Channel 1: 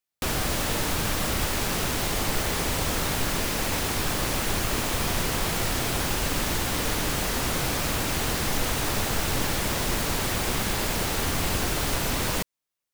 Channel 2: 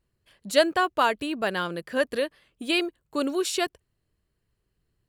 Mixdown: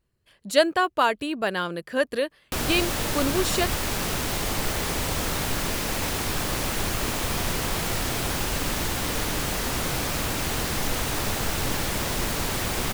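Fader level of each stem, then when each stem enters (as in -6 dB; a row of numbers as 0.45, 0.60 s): -0.5, +1.0 dB; 2.30, 0.00 s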